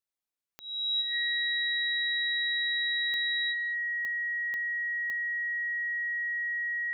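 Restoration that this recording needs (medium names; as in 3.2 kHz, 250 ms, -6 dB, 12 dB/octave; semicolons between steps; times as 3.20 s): de-click; band-stop 1.9 kHz, Q 30; inverse comb 197 ms -22 dB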